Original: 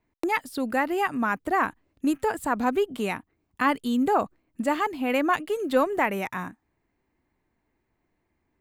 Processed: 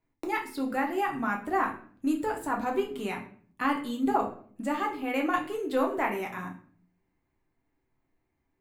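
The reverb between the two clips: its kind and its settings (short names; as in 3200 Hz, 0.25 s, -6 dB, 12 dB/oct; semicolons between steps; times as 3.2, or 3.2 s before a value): shoebox room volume 50 m³, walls mixed, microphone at 0.61 m; gain -7.5 dB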